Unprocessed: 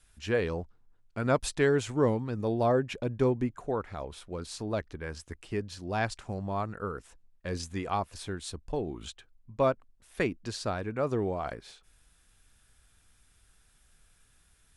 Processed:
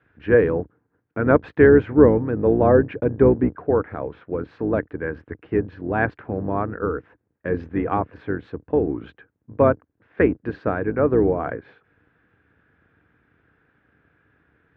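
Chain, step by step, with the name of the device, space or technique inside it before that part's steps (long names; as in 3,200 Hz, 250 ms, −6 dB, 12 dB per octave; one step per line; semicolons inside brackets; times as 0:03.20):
sub-octave bass pedal (sub-octave generator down 2 octaves, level +2 dB; loudspeaker in its box 83–2,100 Hz, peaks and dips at 300 Hz +9 dB, 460 Hz +8 dB, 1,600 Hz +6 dB)
level +6 dB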